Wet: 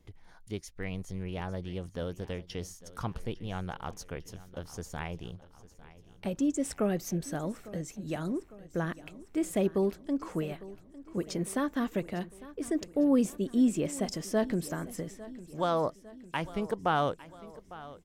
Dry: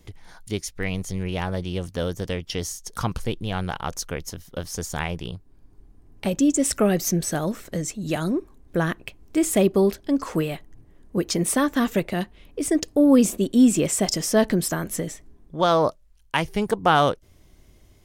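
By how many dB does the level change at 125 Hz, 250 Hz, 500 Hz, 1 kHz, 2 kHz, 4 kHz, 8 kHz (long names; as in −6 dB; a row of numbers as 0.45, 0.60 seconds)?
−9.0, −9.0, −9.0, −9.5, −11.0, −13.5, −15.0 decibels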